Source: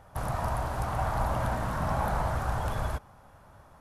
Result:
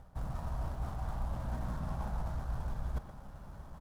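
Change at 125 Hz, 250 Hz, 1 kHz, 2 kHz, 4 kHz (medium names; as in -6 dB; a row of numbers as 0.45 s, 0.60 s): -6.5 dB, -7.0 dB, -15.0 dB, -16.0 dB, -13.0 dB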